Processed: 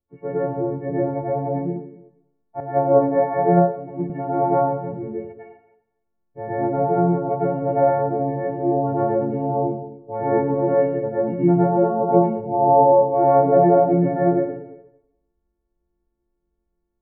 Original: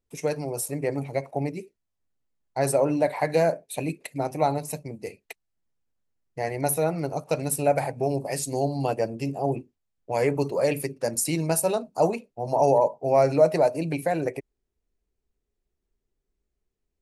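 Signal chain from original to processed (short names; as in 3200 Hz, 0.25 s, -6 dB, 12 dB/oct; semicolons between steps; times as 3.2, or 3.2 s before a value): frequency quantiser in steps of 4 st; Gaussian blur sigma 7.4 samples; plate-style reverb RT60 0.82 s, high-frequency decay 0.95×, pre-delay 90 ms, DRR -8 dB; 2.6–4.1 three-band expander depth 100%; gain -1 dB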